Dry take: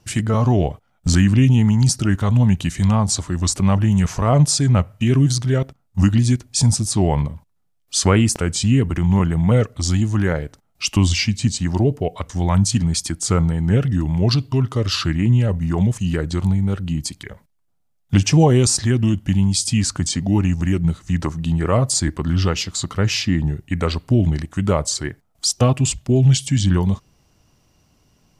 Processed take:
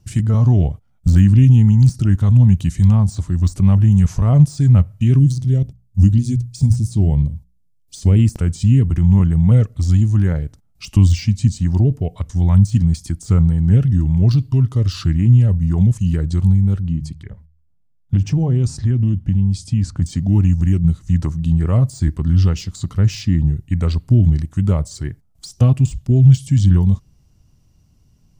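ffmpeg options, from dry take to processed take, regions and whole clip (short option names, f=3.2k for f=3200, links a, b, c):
-filter_complex "[0:a]asettb=1/sr,asplit=3[a][b][c];[a]atrim=end=5.194[d];[b]atrim=start=5.19:end=8.19,asetpts=PTS-STARTPTS,afade=t=in:d=0.004:c=qsin,afade=t=out:st=2.996:d=0.004:c=qsin,equalizer=f=1.3k:t=o:w=1.3:g=-14.5,bandreject=f=60:t=h:w=6,bandreject=f=120:t=h:w=6,bandreject=f=180:t=h:w=6[e];[c]atrim=start=8.186[f];[d][e]acrossfade=d=0.004:c1=hsin:c2=qsin[g];[g][f]acrossfade=d=0.004:c1=qsin:c2=hsin,asettb=1/sr,asplit=3[h][i][j];[h]atrim=end=16.824[k];[i]atrim=start=16.82:end=20.02,asetpts=PTS-STARTPTS,afade=t=in:d=0.004:c=qsin,afade=t=out:st=3.196:d=0.004:c=qsin,lowpass=f=1.9k:p=1,bandreject=f=76.99:t=h:w=4,bandreject=f=153.98:t=h:w=4,acompressor=threshold=-16dB:ratio=2.5:attack=3.2:release=140:knee=1:detection=peak[l];[j]atrim=start=20.016[m];[k][l]acrossfade=d=0.004:c1=hsin:c2=qsin[n];[n][m]acrossfade=d=0.004:c1=qsin:c2=hsin,lowshelf=f=220:g=10.5,deesser=0.5,bass=f=250:g=7,treble=f=4k:g=6,volume=-9.5dB"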